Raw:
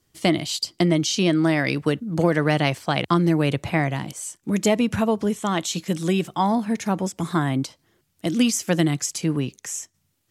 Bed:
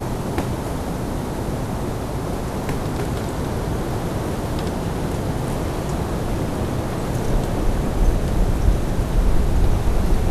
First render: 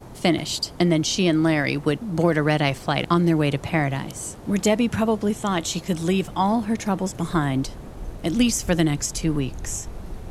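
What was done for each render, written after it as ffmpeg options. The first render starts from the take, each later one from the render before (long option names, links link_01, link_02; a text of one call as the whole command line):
ffmpeg -i in.wav -i bed.wav -filter_complex "[1:a]volume=-16.5dB[link_01];[0:a][link_01]amix=inputs=2:normalize=0" out.wav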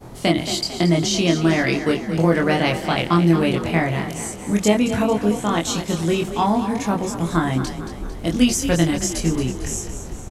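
ffmpeg -i in.wav -filter_complex "[0:a]asplit=2[link_01][link_02];[link_02]adelay=24,volume=-2dB[link_03];[link_01][link_03]amix=inputs=2:normalize=0,asplit=7[link_04][link_05][link_06][link_07][link_08][link_09][link_10];[link_05]adelay=225,afreqshift=31,volume=-10.5dB[link_11];[link_06]adelay=450,afreqshift=62,volume=-16.2dB[link_12];[link_07]adelay=675,afreqshift=93,volume=-21.9dB[link_13];[link_08]adelay=900,afreqshift=124,volume=-27.5dB[link_14];[link_09]adelay=1125,afreqshift=155,volume=-33.2dB[link_15];[link_10]adelay=1350,afreqshift=186,volume=-38.9dB[link_16];[link_04][link_11][link_12][link_13][link_14][link_15][link_16]amix=inputs=7:normalize=0" out.wav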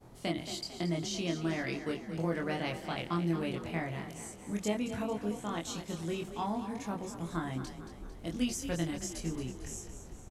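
ffmpeg -i in.wav -af "volume=-16dB" out.wav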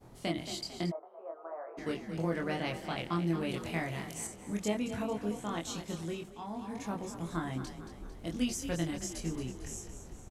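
ffmpeg -i in.wav -filter_complex "[0:a]asplit=3[link_01][link_02][link_03];[link_01]afade=type=out:start_time=0.9:duration=0.02[link_04];[link_02]asuperpass=centerf=790:order=8:qfactor=1,afade=type=in:start_time=0.9:duration=0.02,afade=type=out:start_time=1.77:duration=0.02[link_05];[link_03]afade=type=in:start_time=1.77:duration=0.02[link_06];[link_04][link_05][link_06]amix=inputs=3:normalize=0,asettb=1/sr,asplit=3[link_07][link_08][link_09];[link_07]atrim=end=3.494[link_10];[link_08]atrim=start=3.49:end=4.27,asetpts=PTS-STARTPTS,afade=type=in:duration=0.004:curve=qsin,afade=type=out:start_time=0.776:duration=0.004:curve=qsin,highshelf=frequency=3400:gain=8.5[link_11];[link_09]atrim=start=4.266[link_12];[link_10][link_11]acrossfade=duration=0.004:curve1=hsin:curve2=qsin[link_13];[link_13][link_12]acrossfade=duration=0.004:curve1=qsin:curve2=hsin,asplit=3[link_14][link_15][link_16];[link_14]atrim=end=6.36,asetpts=PTS-STARTPTS,afade=type=out:start_time=5.96:duration=0.4:silence=0.375837[link_17];[link_15]atrim=start=6.36:end=6.44,asetpts=PTS-STARTPTS,volume=-8.5dB[link_18];[link_16]atrim=start=6.44,asetpts=PTS-STARTPTS,afade=type=in:duration=0.4:silence=0.375837[link_19];[link_17][link_18][link_19]concat=n=3:v=0:a=1" out.wav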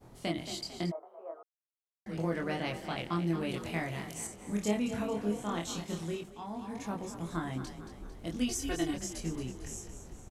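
ffmpeg -i in.wav -filter_complex "[0:a]asettb=1/sr,asplit=3[link_01][link_02][link_03];[link_01]atrim=end=4.364[link_04];[link_02]atrim=start=4.36:end=6.21,asetpts=PTS-STARTPTS,afade=type=in:duration=0.004:curve=qsin,afade=type=out:start_time=1.846:duration=0.004:curve=qsin,asplit=2[link_05][link_06];[link_06]adelay=29,volume=-5.5dB[link_07];[link_05][link_07]amix=inputs=2:normalize=0,atrim=end_sample=81585[link_08];[link_03]atrim=start=6.206[link_09];[link_04][link_08]acrossfade=duration=0.004:curve1=hsin:curve2=qsin[link_10];[link_10][link_09]acrossfade=duration=0.004:curve1=qsin:curve2=hsin,asettb=1/sr,asplit=3[link_11][link_12][link_13];[link_11]atrim=end=8.484[link_14];[link_12]atrim=start=8.48:end=8.94,asetpts=PTS-STARTPTS,afade=type=in:duration=0.004:curve=qsin,afade=type=out:start_time=0.456:duration=0.004:curve=qsin,aecho=1:1:2.7:0.86,atrim=end_sample=20286[link_15];[link_13]atrim=start=8.936[link_16];[link_14][link_15]acrossfade=duration=0.004:curve1=hsin:curve2=qsin[link_17];[link_17][link_16]acrossfade=duration=0.004:curve1=qsin:curve2=hsin,asplit=3[link_18][link_19][link_20];[link_18]atrim=end=1.43,asetpts=PTS-STARTPTS,afade=type=out:start_time=1.426:duration=0.004:curve=hsin[link_21];[link_19]atrim=start=1.43:end=2.06,asetpts=PTS-STARTPTS,volume=0[link_22];[link_20]atrim=start=2.06,asetpts=PTS-STARTPTS,afade=type=in:duration=0.004:curve=hsin[link_23];[link_21][link_22][link_23]concat=n=3:v=0:a=1" out.wav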